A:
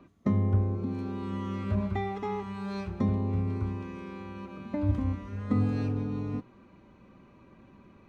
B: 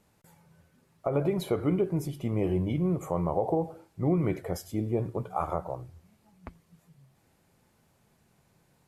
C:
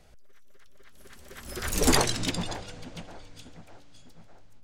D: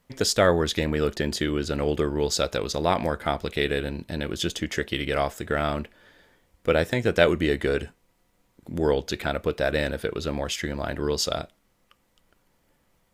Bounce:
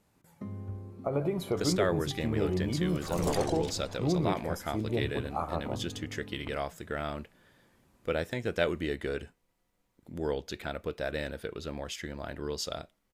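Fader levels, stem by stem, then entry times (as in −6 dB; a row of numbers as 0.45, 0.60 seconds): −14.5, −3.0, −14.5, −9.5 decibels; 0.15, 0.00, 1.40, 1.40 seconds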